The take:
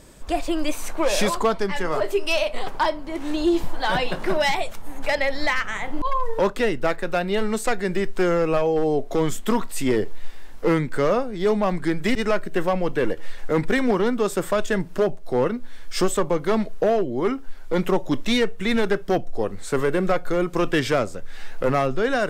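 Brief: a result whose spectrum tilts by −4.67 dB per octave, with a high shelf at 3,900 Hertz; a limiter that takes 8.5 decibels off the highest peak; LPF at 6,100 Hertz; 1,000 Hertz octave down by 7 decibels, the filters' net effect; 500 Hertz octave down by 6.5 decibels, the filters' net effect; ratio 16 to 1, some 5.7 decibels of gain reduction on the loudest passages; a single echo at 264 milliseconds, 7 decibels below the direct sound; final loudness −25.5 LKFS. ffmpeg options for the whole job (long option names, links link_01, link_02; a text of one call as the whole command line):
ffmpeg -i in.wav -af "lowpass=6100,equalizer=frequency=500:width_type=o:gain=-6.5,equalizer=frequency=1000:width_type=o:gain=-7.5,highshelf=frequency=3900:gain=5,acompressor=threshold=-22dB:ratio=16,alimiter=limit=-22.5dB:level=0:latency=1,aecho=1:1:264:0.447,volume=7.5dB" out.wav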